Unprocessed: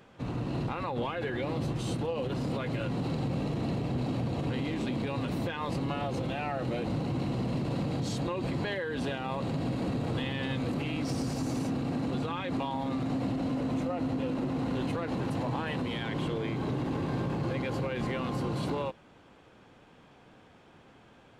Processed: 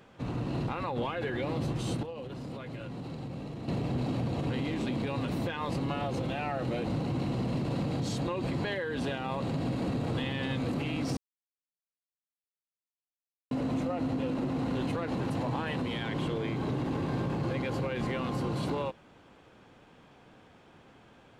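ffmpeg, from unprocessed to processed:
-filter_complex "[0:a]asplit=5[a][b][c][d][e];[a]atrim=end=2.032[f];[b]atrim=start=2.028:end=3.682,asetpts=PTS-STARTPTS,volume=-8dB[g];[c]atrim=start=3.678:end=11.17,asetpts=PTS-STARTPTS,afade=t=out:st=7.488:d=0.004:c=hsin[h];[d]atrim=start=11.17:end=13.51,asetpts=PTS-STARTPTS,volume=0[i];[e]atrim=start=13.51,asetpts=PTS-STARTPTS,afade=t=in:d=0.004:c=hsin[j];[f][g]acrossfade=d=0.004:c1=hsin:c2=hsin[k];[h][i][j]concat=n=3:v=0:a=1[l];[k][l]acrossfade=d=0.004:c1=hsin:c2=hsin"

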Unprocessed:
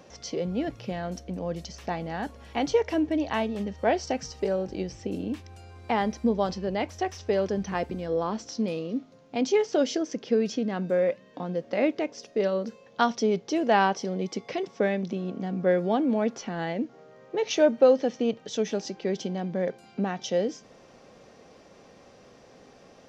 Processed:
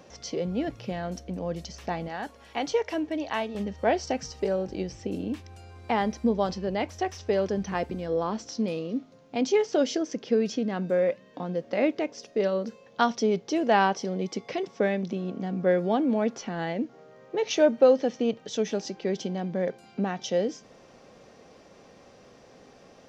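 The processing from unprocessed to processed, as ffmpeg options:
-filter_complex "[0:a]asettb=1/sr,asplit=3[a][b][c];[a]atrim=end=2.084[d];[b]atrim=start=2.08:end=3.55,asetpts=PTS-STARTPTS,afade=t=in:d=0.004:c=qsin,afade=t=out:st=1.466:d=0.004:c=qsin,lowshelf=f=250:g=-12[e];[c]atrim=start=3.546[f];[d][e]acrossfade=d=0.004:c1=hsin:c2=qsin[g];[g][f]acrossfade=d=0.004:c1=qsin:c2=hsin"

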